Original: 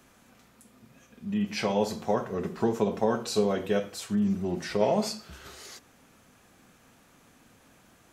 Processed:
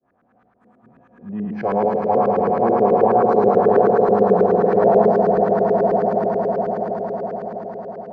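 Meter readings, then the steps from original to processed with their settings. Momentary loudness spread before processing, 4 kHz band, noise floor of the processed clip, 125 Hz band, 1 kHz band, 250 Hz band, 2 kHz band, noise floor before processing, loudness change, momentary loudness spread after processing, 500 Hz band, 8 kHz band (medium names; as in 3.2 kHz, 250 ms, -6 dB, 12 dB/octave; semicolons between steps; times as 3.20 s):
17 LU, under -15 dB, -61 dBFS, +7.5 dB, +17.5 dB, +7.5 dB, +6.5 dB, -60 dBFS, +11.5 dB, 13 LU, +14.5 dB, under -20 dB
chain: spectral sustain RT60 1.75 s; expander -48 dBFS; high-pass 71 Hz; dynamic bell 3.1 kHz, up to -6 dB, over -46 dBFS, Q 1.1; small resonant body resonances 720/1700 Hz, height 8 dB; on a send: echo with a slow build-up 93 ms, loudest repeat 8, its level -9 dB; on the sum: LFO low-pass saw up 9.3 Hz 390–1600 Hz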